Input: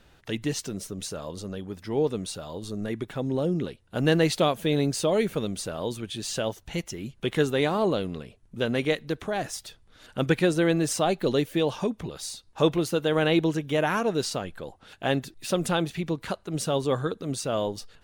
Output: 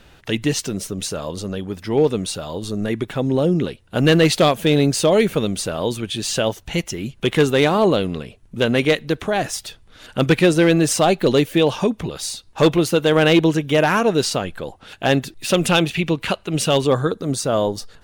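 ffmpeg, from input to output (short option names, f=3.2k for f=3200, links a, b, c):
-af "asetnsamples=n=441:p=0,asendcmd='15.5 equalizer g 10;16.87 equalizer g -5.5',equalizer=f=2.7k:t=o:w=0.64:g=2.5,volume=16dB,asoftclip=hard,volume=-16dB,volume=8.5dB"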